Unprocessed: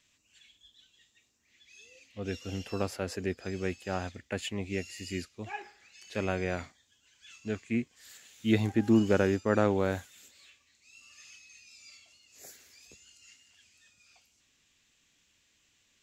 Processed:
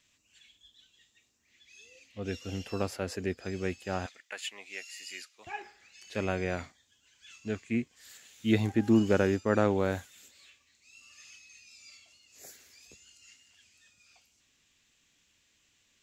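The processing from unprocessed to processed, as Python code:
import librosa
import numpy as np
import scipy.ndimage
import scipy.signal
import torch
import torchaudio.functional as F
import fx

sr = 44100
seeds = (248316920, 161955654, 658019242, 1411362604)

y = fx.highpass(x, sr, hz=1000.0, slope=12, at=(4.06, 5.47))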